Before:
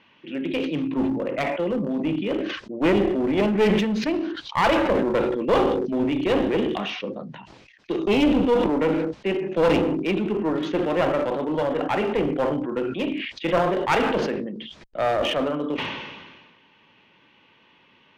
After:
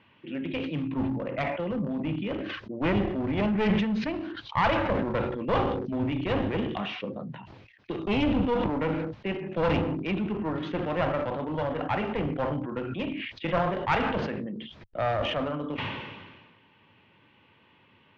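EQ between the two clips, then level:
parametric band 100 Hz +10.5 dB 0.83 octaves
dynamic equaliser 380 Hz, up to −8 dB, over −34 dBFS, Q 1.3
high-frequency loss of the air 190 metres
−2.0 dB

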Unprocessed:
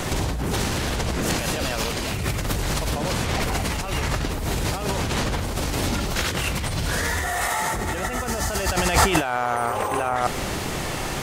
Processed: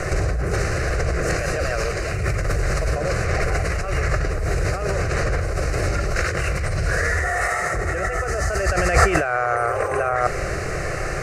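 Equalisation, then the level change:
high-frequency loss of the air 80 metres
phaser with its sweep stopped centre 910 Hz, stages 6
+6.0 dB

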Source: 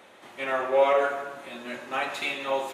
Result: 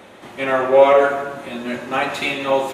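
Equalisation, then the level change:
low-shelf EQ 310 Hz +11.5 dB
+7.0 dB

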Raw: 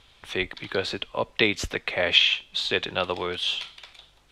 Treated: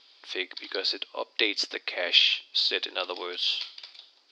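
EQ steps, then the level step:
linear-phase brick-wall high-pass 250 Hz
low-pass with resonance 4,800 Hz, resonance Q 9
−6.5 dB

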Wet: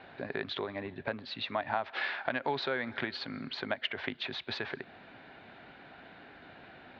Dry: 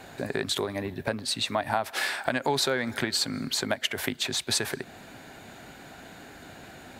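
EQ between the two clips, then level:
low-pass filter 4,100 Hz 24 dB per octave
high-frequency loss of the air 280 metres
spectral tilt +2 dB per octave
−3.5 dB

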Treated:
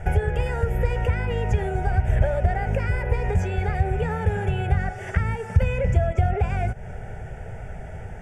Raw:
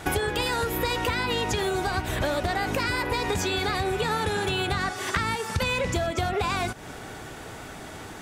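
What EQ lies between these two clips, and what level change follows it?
low-pass filter 10,000 Hz 12 dB per octave
spectral tilt −3.5 dB per octave
phaser with its sweep stopped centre 1,100 Hz, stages 6
0.0 dB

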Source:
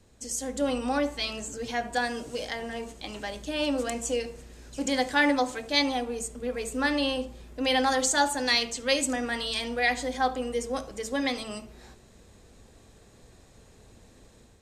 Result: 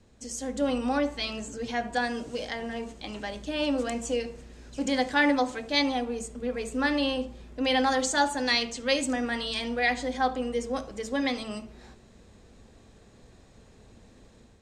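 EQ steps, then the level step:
high-frequency loss of the air 52 metres
parametric band 220 Hz +3.5 dB 0.47 octaves
0.0 dB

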